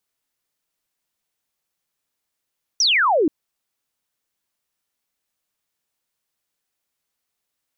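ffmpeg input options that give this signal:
-f lavfi -i "aevalsrc='0.2*clip(t/0.002,0,1)*clip((0.48-t)/0.002,0,1)*sin(2*PI*6100*0.48/log(280/6100)*(exp(log(280/6100)*t/0.48)-1))':d=0.48:s=44100"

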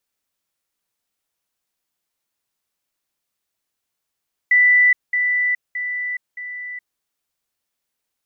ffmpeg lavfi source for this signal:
-f lavfi -i "aevalsrc='pow(10,(-10-6*floor(t/0.62))/20)*sin(2*PI*1980*t)*clip(min(mod(t,0.62),0.42-mod(t,0.62))/0.005,0,1)':d=2.48:s=44100"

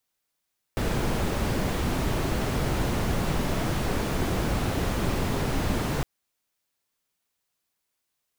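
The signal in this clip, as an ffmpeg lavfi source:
-f lavfi -i "anoisesrc=c=brown:a=0.248:d=5.26:r=44100:seed=1"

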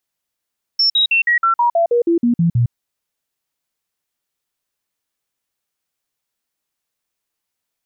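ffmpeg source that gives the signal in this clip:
-f lavfi -i "aevalsrc='0.282*clip(min(mod(t,0.16),0.11-mod(t,0.16))/0.005,0,1)*sin(2*PI*5400*pow(2,-floor(t/0.16)/2)*mod(t,0.16))':d=1.92:s=44100"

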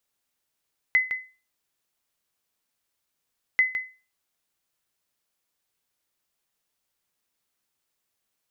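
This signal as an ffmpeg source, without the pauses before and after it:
-f lavfi -i "aevalsrc='0.237*(sin(2*PI*2030*mod(t,2.64))*exp(-6.91*mod(t,2.64)/0.33)+0.355*sin(2*PI*2030*max(mod(t,2.64)-0.16,0))*exp(-6.91*max(mod(t,2.64)-0.16,0)/0.33))':d=5.28:s=44100"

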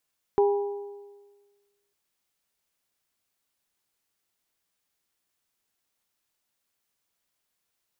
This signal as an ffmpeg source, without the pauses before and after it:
-f lavfi -i "aevalsrc='0.15*pow(10,-3*t/1.43)*sin(2*PI*405*t)+0.0596*pow(10,-3*t/1.162)*sin(2*PI*810*t)+0.0237*pow(10,-3*t/1.1)*sin(2*PI*972*t)':d=1.55:s=44100"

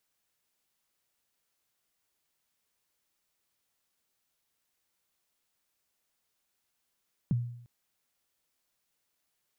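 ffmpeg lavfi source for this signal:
-f lavfi -i "aevalsrc='0.0794*pow(10,-3*t/0.7)*sin(2*PI*(210*0.022/log(120/210)*(exp(log(120/210)*min(t,0.022)/0.022)-1)+120*max(t-0.022,0)))':d=0.35:s=44100"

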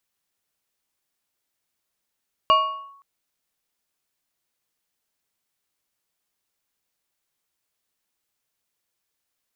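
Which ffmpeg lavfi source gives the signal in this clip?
-f lavfi -i "aevalsrc='0.299*pow(10,-3*t/0.74)*sin(2*PI*1110*t+0.66*clip(1-t/0.44,0,1)*sin(2*PI*1.57*1110*t))':d=0.52:s=44100"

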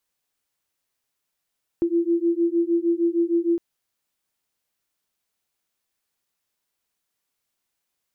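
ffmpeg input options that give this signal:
-f lavfi -i "aevalsrc='0.0841*(sin(2*PI*336*t)+sin(2*PI*342.5*t))':d=1.76:s=44100"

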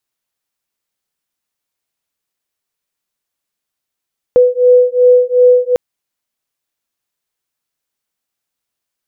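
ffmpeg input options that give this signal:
-f lavfi -i "aevalsrc='0.355*(sin(2*PI*495*t)+sin(2*PI*497.7*t))':d=1.4:s=44100"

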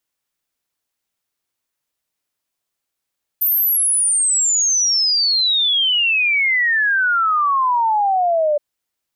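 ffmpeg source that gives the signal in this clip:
-f lavfi -i "aevalsrc='0.211*clip(min(t,5.17-t)/0.01,0,1)*sin(2*PI*14000*5.17/log(580/14000)*(exp(log(580/14000)*t/5.17)-1))':d=5.17:s=44100"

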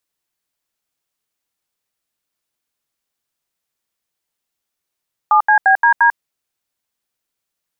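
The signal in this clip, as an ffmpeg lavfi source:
-f lavfi -i "aevalsrc='0.299*clip(min(mod(t,0.174),0.095-mod(t,0.174))/0.002,0,1)*(eq(floor(t/0.174),0)*(sin(2*PI*852*mod(t,0.174))+sin(2*PI*1209*mod(t,0.174)))+eq(floor(t/0.174),1)*(sin(2*PI*852*mod(t,0.174))+sin(2*PI*1633*mod(t,0.174)))+eq(floor(t/0.174),2)*(sin(2*PI*770*mod(t,0.174))+sin(2*PI*1633*mod(t,0.174)))+eq(floor(t/0.174),3)*(sin(2*PI*941*mod(t,0.174))+sin(2*PI*1633*mod(t,0.174)))+eq(floor(t/0.174),4)*(sin(2*PI*941*mod(t,0.174))+sin(2*PI*1633*mod(t,0.174))))':d=0.87:s=44100"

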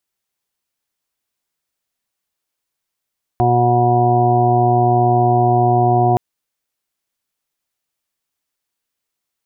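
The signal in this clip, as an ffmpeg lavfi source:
-f lavfi -i "aevalsrc='0.158*sin(2*PI*121*t)+0.0631*sin(2*PI*242*t)+0.126*sin(2*PI*363*t)+0.0178*sin(2*PI*484*t)+0.0316*sin(2*PI*605*t)+0.211*sin(2*PI*726*t)+0.0237*sin(2*PI*847*t)+0.0501*sin(2*PI*968*t)':d=2.77:s=44100"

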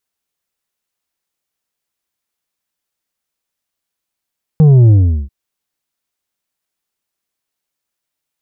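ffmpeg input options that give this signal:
-f lavfi -i "aevalsrc='0.596*clip((0.69-t)/0.39,0,1)*tanh(2*sin(2*PI*160*0.69/log(65/160)*(exp(log(65/160)*t/0.69)-1)))/tanh(2)':d=0.69:s=44100"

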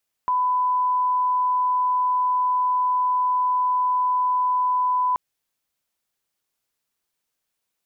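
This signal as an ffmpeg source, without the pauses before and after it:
-f lavfi -i "sine=f=1000:d=4.88:r=44100,volume=0.06dB"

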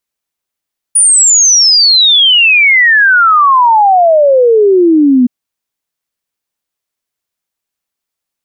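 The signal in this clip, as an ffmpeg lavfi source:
-f lavfi -i "aevalsrc='0.668*clip(min(t,4.32-t)/0.01,0,1)*sin(2*PI*9700*4.32/log(240/9700)*(exp(log(240/9700)*t/4.32)-1))':d=4.32:s=44100"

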